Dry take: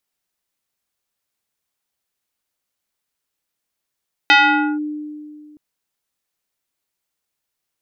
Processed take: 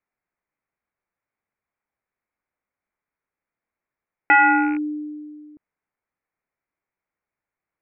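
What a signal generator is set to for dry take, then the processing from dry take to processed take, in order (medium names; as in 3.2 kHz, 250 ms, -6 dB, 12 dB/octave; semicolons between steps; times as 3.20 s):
FM tone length 1.27 s, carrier 300 Hz, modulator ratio 3.77, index 2.8, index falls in 0.49 s linear, decay 2.15 s, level -6.5 dB
rattle on loud lows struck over -35 dBFS, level -20 dBFS; elliptic low-pass 2.3 kHz, stop band 40 dB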